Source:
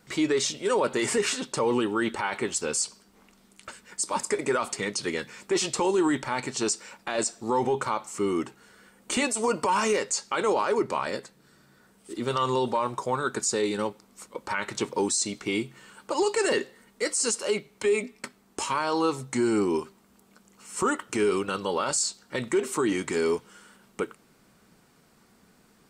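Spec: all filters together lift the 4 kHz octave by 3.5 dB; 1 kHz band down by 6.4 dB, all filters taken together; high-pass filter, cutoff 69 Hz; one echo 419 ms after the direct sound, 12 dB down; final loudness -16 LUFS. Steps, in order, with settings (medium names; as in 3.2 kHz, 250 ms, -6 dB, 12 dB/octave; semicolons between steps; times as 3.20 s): high-pass 69 Hz; peaking EQ 1 kHz -8 dB; peaking EQ 4 kHz +5 dB; delay 419 ms -12 dB; trim +12 dB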